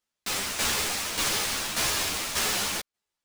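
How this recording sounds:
aliases and images of a low sample rate 17,000 Hz, jitter 0%
tremolo saw down 1.7 Hz, depth 65%
a shimmering, thickened sound

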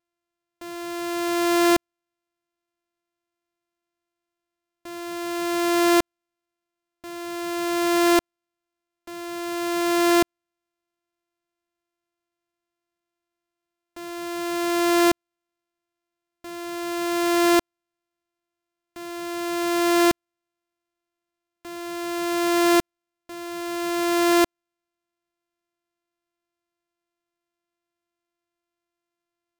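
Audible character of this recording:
a buzz of ramps at a fixed pitch in blocks of 128 samples

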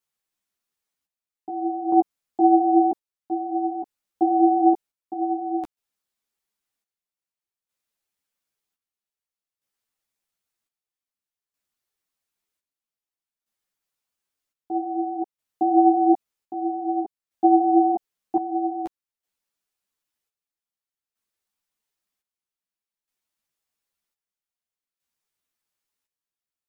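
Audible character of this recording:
chopped level 0.52 Hz, depth 65%, duty 55%
a shimmering, thickened sound

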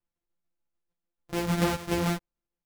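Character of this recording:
a buzz of ramps at a fixed pitch in blocks of 256 samples
tremolo saw down 6.8 Hz, depth 55%
a shimmering, thickened sound

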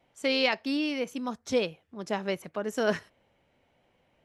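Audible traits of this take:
background noise floor −70 dBFS
spectral slope −2.0 dB per octave

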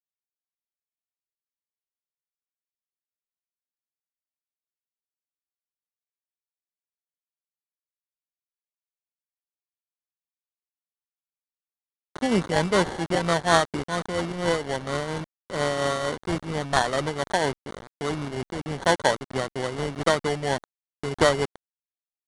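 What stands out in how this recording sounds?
a quantiser's noise floor 6 bits, dither none
tremolo triangle 4.3 Hz, depth 50%
aliases and images of a low sample rate 2,500 Hz, jitter 0%
IMA ADPCM

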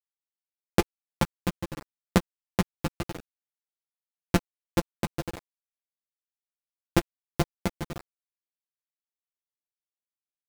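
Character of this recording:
a buzz of ramps at a fixed pitch in blocks of 256 samples
tremolo saw down 11 Hz, depth 35%
a quantiser's noise floor 6 bits, dither none
a shimmering, thickened sound

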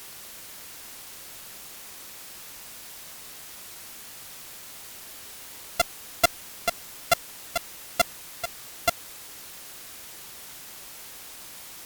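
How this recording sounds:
a buzz of ramps at a fixed pitch in blocks of 64 samples
tremolo saw down 1.3 Hz, depth 80%
a quantiser's noise floor 8 bits, dither triangular
Opus

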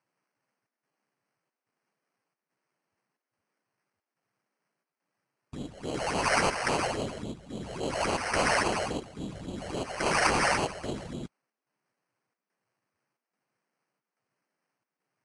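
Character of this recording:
phaser sweep stages 6, 3.6 Hz, lowest notch 260–2,200 Hz
chopped level 1.2 Hz, depth 60%, duty 80%
aliases and images of a low sample rate 3,600 Hz, jitter 0%
Ogg Vorbis

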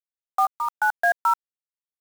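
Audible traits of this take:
a quantiser's noise floor 6 bits, dither none
sample-and-hold tremolo 4.4 Hz, depth 55%

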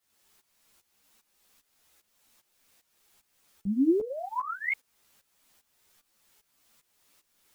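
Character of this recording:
phaser sweep stages 6, 0.58 Hz, lowest notch 380–1,700 Hz
a quantiser's noise floor 12 bits, dither triangular
tremolo saw up 2.5 Hz, depth 85%
a shimmering, thickened sound

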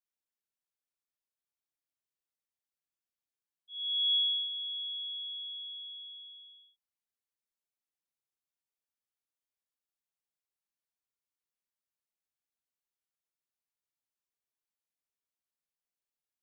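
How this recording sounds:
background noise floor −94 dBFS
spectral slope +2.0 dB per octave

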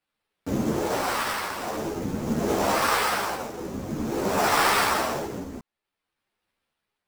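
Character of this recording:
tremolo triangle 0.5 Hz, depth 75%
aliases and images of a low sample rate 6,700 Hz, jitter 20%
a shimmering, thickened sound

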